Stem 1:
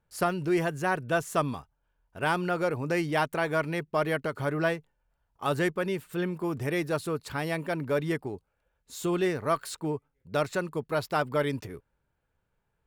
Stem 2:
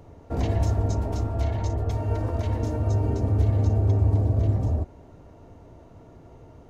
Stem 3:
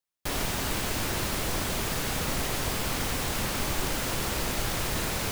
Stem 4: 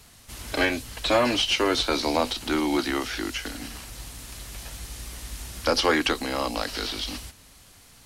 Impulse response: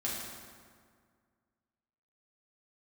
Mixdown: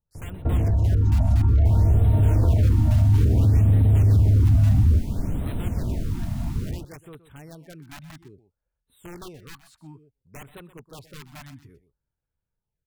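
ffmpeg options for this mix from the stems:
-filter_complex "[0:a]aeval=exprs='(mod(11.2*val(0)+1,2)-1)/11.2':c=same,adynamicequalizer=threshold=0.01:dfrequency=3900:dqfactor=0.7:tfrequency=3900:tqfactor=0.7:attack=5:release=100:ratio=0.375:range=2:mode=cutabove:tftype=highshelf,volume=0.168,asplit=2[s0][s1];[s1]volume=0.188[s2];[1:a]bass=f=250:g=4,treble=f=4000:g=-12,alimiter=limit=0.106:level=0:latency=1:release=27,dynaudnorm=f=650:g=3:m=2.82,adelay=150,volume=1[s3];[2:a]lowshelf=f=340:t=q:w=3:g=11,adelay=1400,volume=0.133,asplit=2[s4][s5];[s5]volume=0.224[s6];[s3]acompressor=threshold=0.0447:ratio=2.5,volume=1[s7];[s2][s6]amix=inputs=2:normalize=0,aecho=0:1:124:1[s8];[s0][s4][s7][s8]amix=inputs=4:normalize=0,lowshelf=f=210:g=10,afftfilt=real='re*(1-between(b*sr/1024,400*pow(5900/400,0.5+0.5*sin(2*PI*0.59*pts/sr))/1.41,400*pow(5900/400,0.5+0.5*sin(2*PI*0.59*pts/sr))*1.41))':imag='im*(1-between(b*sr/1024,400*pow(5900/400,0.5+0.5*sin(2*PI*0.59*pts/sr))/1.41,400*pow(5900/400,0.5+0.5*sin(2*PI*0.59*pts/sr))*1.41))':win_size=1024:overlap=0.75"

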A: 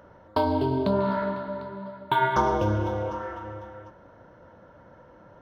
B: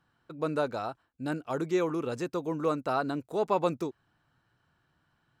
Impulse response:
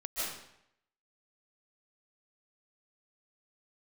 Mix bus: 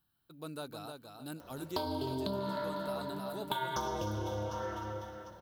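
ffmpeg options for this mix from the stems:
-filter_complex "[0:a]aexciter=amount=5.6:drive=3.4:freq=3300,adelay=1400,volume=0.668,asplit=2[s0][s1];[s1]volume=0.211[s2];[1:a]equalizer=f=125:t=o:w=1:g=-5,equalizer=f=250:t=o:w=1:g=-4,equalizer=f=500:t=o:w=1:g=-10,equalizer=f=1000:t=o:w=1:g=-6,equalizer=f=2000:t=o:w=1:g=-11,equalizer=f=4000:t=o:w=1:g=6,equalizer=f=8000:t=o:w=1:g=-6,aexciter=amount=9.7:drive=2.8:freq=8800,volume=0.631,asplit=2[s3][s4];[s4]volume=0.531[s5];[s2][s5]amix=inputs=2:normalize=0,aecho=0:1:308|616|924|1232:1|0.25|0.0625|0.0156[s6];[s0][s3][s6]amix=inputs=3:normalize=0,acompressor=threshold=0.0224:ratio=6"

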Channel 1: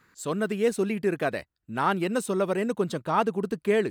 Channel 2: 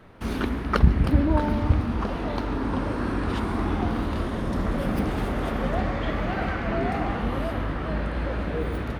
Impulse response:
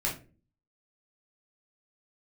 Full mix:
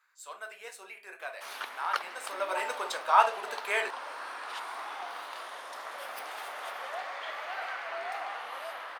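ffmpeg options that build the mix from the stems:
-filter_complex "[0:a]volume=0.944,afade=t=in:st=2.21:d=0.47:silence=0.237137,asplit=2[s0][s1];[s1]volume=0.531[s2];[1:a]highshelf=f=3900:g=6,adelay=1200,volume=0.531[s3];[2:a]atrim=start_sample=2205[s4];[s2][s4]afir=irnorm=-1:irlink=0[s5];[s0][s3][s5]amix=inputs=3:normalize=0,highpass=f=700:w=0.5412,highpass=f=700:w=1.3066"

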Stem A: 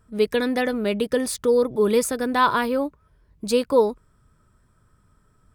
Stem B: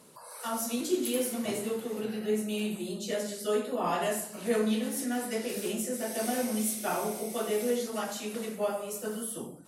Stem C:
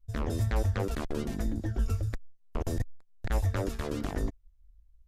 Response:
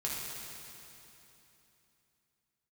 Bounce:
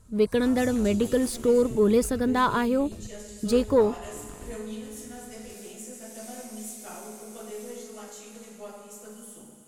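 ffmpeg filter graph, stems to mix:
-filter_complex "[0:a]lowshelf=f=320:g=11.5,asoftclip=type=tanh:threshold=0.631,volume=0.531[s0];[1:a]aeval=exprs='if(lt(val(0),0),0.708*val(0),val(0))':c=same,equalizer=f=7100:w=2.3:g=10.5,volume=0.188,asplit=2[s1][s2];[s2]volume=0.708[s3];[2:a]adelay=250,volume=0.266[s4];[3:a]atrim=start_sample=2205[s5];[s3][s5]afir=irnorm=-1:irlink=0[s6];[s0][s1][s4][s6]amix=inputs=4:normalize=0"

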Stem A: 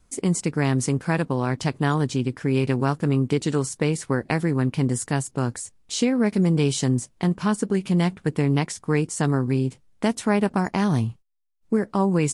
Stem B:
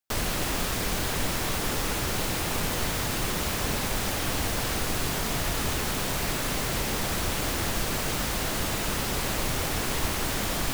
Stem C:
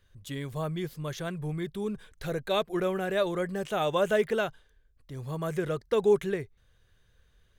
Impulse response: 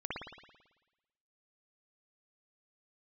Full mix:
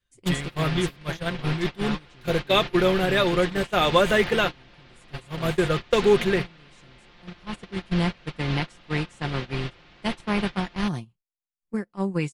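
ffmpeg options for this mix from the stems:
-filter_complex "[0:a]volume=0.531[s0];[1:a]lowpass=f=4400:w=0.5412,lowpass=f=4400:w=1.3066,adelay=150,volume=0.422,asplit=2[s1][s2];[s2]volume=0.422[s3];[2:a]adynamicequalizer=threshold=0.00708:dfrequency=650:dqfactor=6.3:tfrequency=650:tqfactor=6.3:attack=5:release=100:ratio=0.375:range=2:mode=cutabove:tftype=bell,acontrast=61,volume=0.944,asplit=2[s4][s5];[s5]apad=whole_len=544060[s6];[s0][s6]sidechaincompress=threshold=0.0316:ratio=3:attack=16:release=1430[s7];[3:a]atrim=start_sample=2205[s8];[s3][s8]afir=irnorm=-1:irlink=0[s9];[s7][s1][s4][s9]amix=inputs=4:normalize=0,agate=range=0.0891:threshold=0.0562:ratio=16:detection=peak,equalizer=f=2800:w=0.72:g=5.5,aecho=1:1:5.7:0.41"

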